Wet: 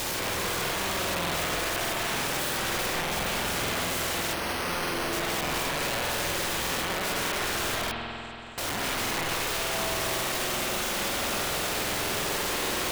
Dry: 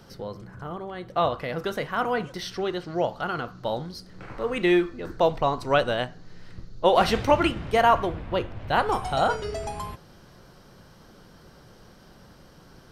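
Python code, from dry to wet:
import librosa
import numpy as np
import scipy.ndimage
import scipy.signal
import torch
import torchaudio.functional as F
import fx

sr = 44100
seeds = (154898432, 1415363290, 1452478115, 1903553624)

y = fx.bin_compress(x, sr, power=0.4)
y = fx.over_compress(y, sr, threshold_db=-24.0, ratio=-1.0)
y = np.clip(y, -10.0 ** (-22.5 / 20.0), 10.0 ** (-22.5 / 20.0))
y = fx.bandpass_q(y, sr, hz=7700.0, q=12.0, at=(7.91, 8.58))
y = (np.mod(10.0 ** (26.5 / 20.0) * y + 1.0, 2.0) - 1.0) / 10.0 ** (26.5 / 20.0)
y = fx.rev_spring(y, sr, rt60_s=3.2, pass_ms=(47,), chirp_ms=35, drr_db=-0.5)
y = fx.resample_bad(y, sr, factor=6, down='filtered', up='hold', at=(4.33, 5.13))
y = fx.buffer_crackle(y, sr, first_s=0.62, period_s=0.6, block=2048, kind='repeat')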